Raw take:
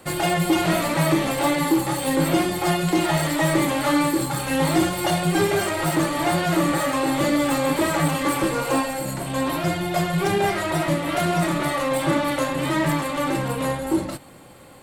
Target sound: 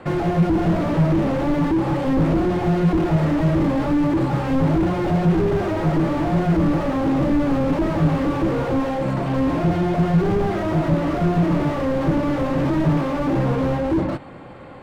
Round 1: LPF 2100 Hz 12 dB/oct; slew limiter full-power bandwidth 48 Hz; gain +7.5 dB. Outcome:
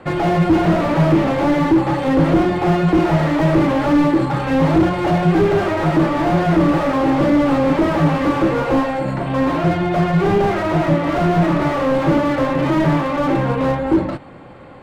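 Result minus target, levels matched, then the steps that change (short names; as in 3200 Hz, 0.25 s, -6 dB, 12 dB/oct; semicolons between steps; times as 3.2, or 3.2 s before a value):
slew limiter: distortion -9 dB
change: slew limiter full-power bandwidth 20.5 Hz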